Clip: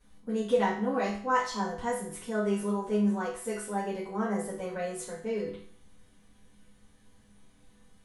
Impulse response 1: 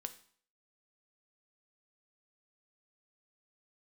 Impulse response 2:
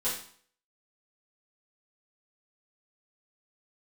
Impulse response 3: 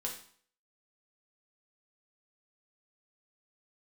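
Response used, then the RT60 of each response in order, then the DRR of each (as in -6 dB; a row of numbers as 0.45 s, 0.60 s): 2; 0.50 s, 0.50 s, 0.50 s; 8.0 dB, -11.0 dB, -1.5 dB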